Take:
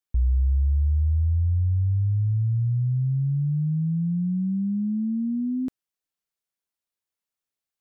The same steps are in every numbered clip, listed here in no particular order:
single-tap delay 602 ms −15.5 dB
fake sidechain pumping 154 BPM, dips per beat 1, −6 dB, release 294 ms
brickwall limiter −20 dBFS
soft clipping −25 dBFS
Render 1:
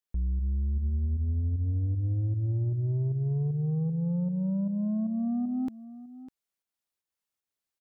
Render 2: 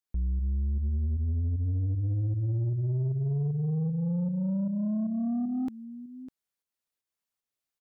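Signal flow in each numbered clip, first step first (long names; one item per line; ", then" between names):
fake sidechain pumping, then brickwall limiter, then soft clipping, then single-tap delay
fake sidechain pumping, then brickwall limiter, then single-tap delay, then soft clipping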